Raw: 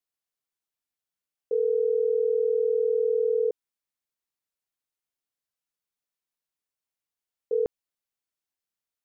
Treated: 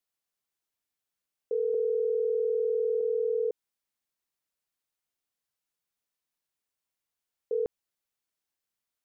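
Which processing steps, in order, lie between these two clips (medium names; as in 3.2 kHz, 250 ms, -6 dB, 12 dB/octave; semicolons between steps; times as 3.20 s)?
1.74–3.01 s: comb 2.3 ms, depth 78%; peak limiter -24.5 dBFS, peak gain reduction 11.5 dB; trim +2 dB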